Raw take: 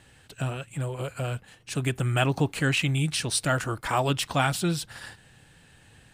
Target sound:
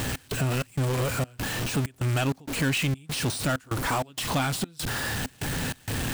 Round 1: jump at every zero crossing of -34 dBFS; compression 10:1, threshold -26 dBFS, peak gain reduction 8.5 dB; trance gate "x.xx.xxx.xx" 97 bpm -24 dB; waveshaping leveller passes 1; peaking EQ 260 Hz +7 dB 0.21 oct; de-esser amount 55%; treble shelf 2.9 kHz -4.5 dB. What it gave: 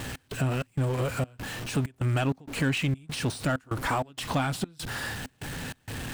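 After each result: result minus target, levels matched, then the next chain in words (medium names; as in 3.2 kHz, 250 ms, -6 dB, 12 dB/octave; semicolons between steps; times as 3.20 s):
8 kHz band -4.5 dB; jump at every zero crossing: distortion -6 dB
jump at every zero crossing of -34 dBFS; compression 10:1, threshold -26 dBFS, peak gain reduction 8.5 dB; trance gate "x.xx.xxx.xx" 97 bpm -24 dB; waveshaping leveller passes 1; peaking EQ 260 Hz +7 dB 0.21 oct; de-esser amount 55%; treble shelf 2.9 kHz +4 dB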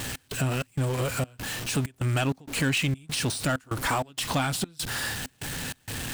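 jump at every zero crossing: distortion -6 dB
jump at every zero crossing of -26 dBFS; compression 10:1, threshold -26 dBFS, peak gain reduction 9.5 dB; trance gate "x.xx.xxx.xx" 97 bpm -24 dB; waveshaping leveller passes 1; peaking EQ 260 Hz +7 dB 0.21 oct; de-esser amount 55%; treble shelf 2.9 kHz +4 dB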